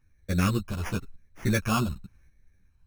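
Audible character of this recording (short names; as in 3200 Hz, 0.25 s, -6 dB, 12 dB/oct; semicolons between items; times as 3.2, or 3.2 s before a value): random-step tremolo 3.5 Hz; phasing stages 6, 0.93 Hz, lowest notch 460–1000 Hz; aliases and images of a low sample rate 4000 Hz, jitter 0%; a shimmering, thickened sound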